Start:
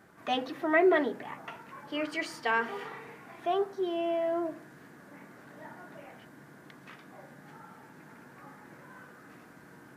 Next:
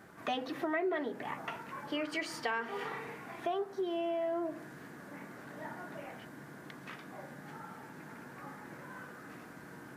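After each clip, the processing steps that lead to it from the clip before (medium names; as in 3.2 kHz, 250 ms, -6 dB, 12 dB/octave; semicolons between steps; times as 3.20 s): compression 4:1, threshold -36 dBFS, peak gain reduction 14 dB; trim +3 dB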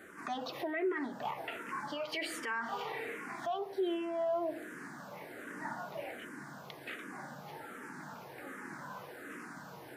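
bass shelf 190 Hz -9.5 dB; peak limiter -32 dBFS, peak gain reduction 10 dB; barber-pole phaser -1.3 Hz; trim +6.5 dB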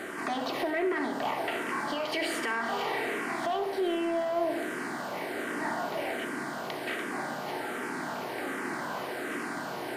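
spectral levelling over time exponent 0.6; in parallel at -5.5 dB: saturation -30 dBFS, distortion -15 dB; on the sum: reverberation RT60 0.70 s, pre-delay 59 ms, DRR 12 dB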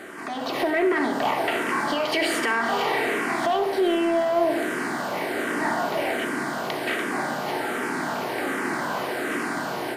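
level rider gain up to 9 dB; trim -1.5 dB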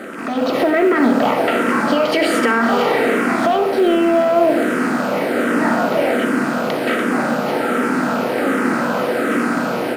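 rattle on loud lows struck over -45 dBFS, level -30 dBFS; small resonant body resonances 230/500/1300 Hz, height 13 dB, ringing for 30 ms; companded quantiser 8-bit; trim +3 dB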